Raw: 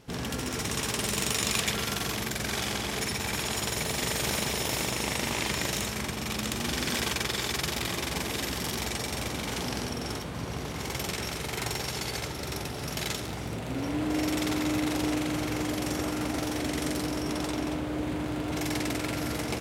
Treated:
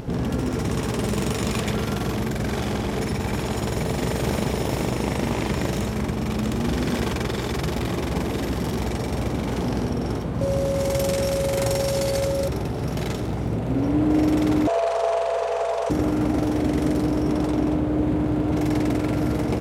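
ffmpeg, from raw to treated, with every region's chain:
-filter_complex "[0:a]asettb=1/sr,asplit=3[a][b][c];[a]atrim=end=10.414[d];[b]atrim=start=10.41:end=12.48,asetpts=PTS-STARTPTS,afade=t=in:d=0.004:c=qsin,afade=t=out:st=2.066:d=0.004:c=qsin,equalizer=f=9.4k:t=o:w=2.1:g=11.5,aeval=exprs='val(0)+0.0316*sin(2*PI*550*n/s)':c=same[e];[c]atrim=start=12.476[f];[d][e]acrossfade=d=0.004:c1=hsin:c2=qsin[g];[g][f]acrossfade=d=0.004:c1=qsin:c2=hsin,asettb=1/sr,asplit=3[h][i][j];[h]atrim=end=14.674[k];[i]atrim=start=14.67:end=15.9,asetpts=PTS-STARTPTS,afade=t=in:d=0.004:c=qsin,afade=t=out:st=1.226:d=0.004:c=qsin,lowpass=f=9.2k:w=0.5412,lowpass=f=9.2k:w=1.3066,afreqshift=370,aeval=exprs='val(0)+0.001*(sin(2*PI*60*n/s)+sin(2*PI*2*60*n/s)/2+sin(2*PI*3*60*n/s)/3+sin(2*PI*4*60*n/s)/4+sin(2*PI*5*60*n/s)/5)':c=same[l];[j]atrim=start=15.896[m];[k][l]acrossfade=d=0.004:c1=hsin:c2=qsin[n];[n][m]acrossfade=d=0.004:c1=qsin:c2=hsin,tiltshelf=f=1.2k:g=8.5,acompressor=mode=upward:threshold=-27dB:ratio=2.5,volume=2.5dB"

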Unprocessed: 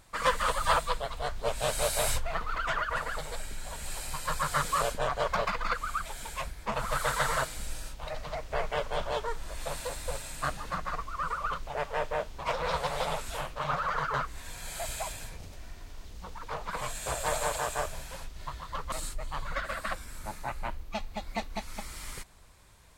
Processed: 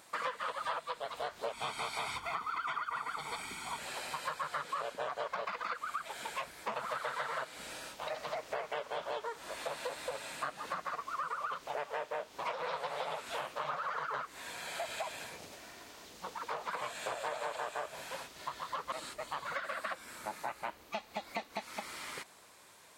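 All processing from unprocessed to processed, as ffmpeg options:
-filter_complex "[0:a]asettb=1/sr,asplit=3[a][b][c];[a]atrim=end=1.534[d];[b]atrim=start=1.53:end=3.79,asetpts=PTS-STARTPTS,afade=t=in:d=0.004:c=qsin,afade=t=out:st=2.256:d=0.004:c=qsin,equalizer=f=9k:t=o:w=0.25:g=4.5,aecho=1:1:0.9:0.88,atrim=end_sample=99666[e];[c]atrim=start=3.786[f];[d][e]acrossfade=d=0.004:c1=hsin:c2=qsin[g];[g][f]acrossfade=d=0.004:c1=qsin:c2=hsin,acrossover=split=4400[h][i];[i]acompressor=threshold=-54dB:ratio=4:attack=1:release=60[j];[h][j]amix=inputs=2:normalize=0,highpass=290,acompressor=threshold=-38dB:ratio=6,volume=3dB"

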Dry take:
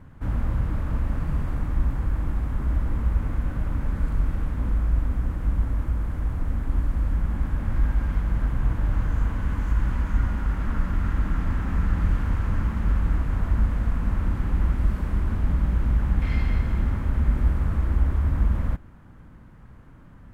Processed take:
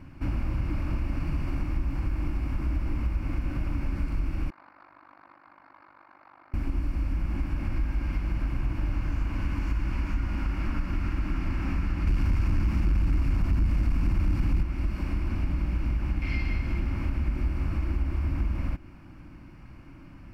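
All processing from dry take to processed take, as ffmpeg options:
-filter_complex "[0:a]asettb=1/sr,asplit=3[a][b][c];[a]atrim=end=4.504[d];[b]atrim=start=4.5:end=6.54,asetpts=PTS-STARTPTS,afade=t=in:d=0.004:c=qsin,afade=t=out:st=2.036:d=0.004:c=qsin,tremolo=f=49:d=0.857,asuperpass=centerf=1300:order=4:qfactor=1,adynamicsmooth=sensitivity=4.5:basefreq=1.3k[e];[c]atrim=start=6.536[f];[d][e]acrossfade=d=0.004:c1=hsin:c2=qsin[g];[g][f]acrossfade=d=0.004:c1=qsin:c2=hsin,asettb=1/sr,asplit=3[h][i][j];[h]atrim=end=12.074[k];[i]atrim=start=12.07:end=14.63,asetpts=PTS-STARTPTS,afade=t=in:d=0.004:c=qsin,afade=t=out:st=2.556:d=0.004:c=qsin,bass=f=250:g=5,treble=f=4k:g=5,aeval=exprs='0.447*sin(PI/2*1.41*val(0)/0.447)':c=same[l];[j]atrim=start=14.626[m];[k][l]acrossfade=d=0.004:c1=hsin:c2=qsin[n];[n][m]acrossfade=d=0.004:c1=qsin:c2=hsin,superequalizer=6b=2.24:7b=0.562:12b=3.16:14b=2.82,acompressor=threshold=-25dB:ratio=3"

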